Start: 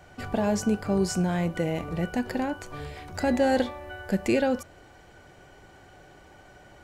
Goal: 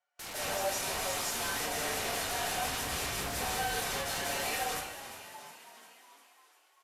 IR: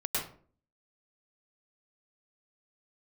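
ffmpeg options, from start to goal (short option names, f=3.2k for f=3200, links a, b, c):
-filter_complex "[0:a]highpass=f=720:w=0.5412,highpass=f=720:w=1.3066,agate=range=-36dB:threshold=-46dB:ratio=16:detection=peak,aecho=1:1:6.4:0.72,afreqshift=-41,volume=33.5dB,asoftclip=hard,volume=-33.5dB,asettb=1/sr,asplit=3[a][b][c];[a]atrim=end=2.474[d];[b]atrim=start=2.47:end=3.41,asetpts=PTS-STARTPTS,afade=t=in:d=0.004:c=qsin,afade=t=out:st=0.936:d=0.004:c=qsin,aeval=exprs='val(0)+0.00316*(sin(2*PI*60*n/s)+sin(2*PI*2*60*n/s)/2+sin(2*PI*3*60*n/s)/3+sin(2*PI*4*60*n/s)/4+sin(2*PI*5*60*n/s)/5)':c=same[e];[c]atrim=start=3.406[f];[d][e]acrossfade=d=0.004:c1=hsin:c2=qsin[g];[g][f]acrossfade=d=0.004:c1=qsin:c2=hsin,aeval=exprs='(mod(133*val(0)+1,2)-1)/133':c=same,asplit=8[h][i][j][k][l][m][n][o];[i]adelay=353,afreqshift=56,volume=-11.5dB[p];[j]adelay=706,afreqshift=112,volume=-16.1dB[q];[k]adelay=1059,afreqshift=168,volume=-20.7dB[r];[l]adelay=1412,afreqshift=224,volume=-25.2dB[s];[m]adelay=1765,afreqshift=280,volume=-29.8dB[t];[n]adelay=2118,afreqshift=336,volume=-34.4dB[u];[o]adelay=2471,afreqshift=392,volume=-39dB[v];[h][p][q][r][s][t][u][v]amix=inputs=8:normalize=0[w];[1:a]atrim=start_sample=2205,asetrate=28224,aresample=44100[x];[w][x]afir=irnorm=-1:irlink=0,aresample=32000,aresample=44100,volume=4dB"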